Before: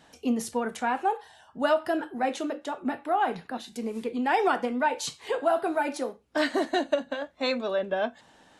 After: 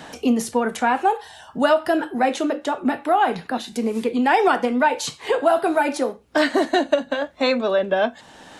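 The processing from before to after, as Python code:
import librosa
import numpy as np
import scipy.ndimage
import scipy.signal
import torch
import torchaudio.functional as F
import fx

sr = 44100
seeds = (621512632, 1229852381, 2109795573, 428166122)

y = fx.band_squash(x, sr, depth_pct=40)
y = F.gain(torch.from_numpy(y), 7.5).numpy()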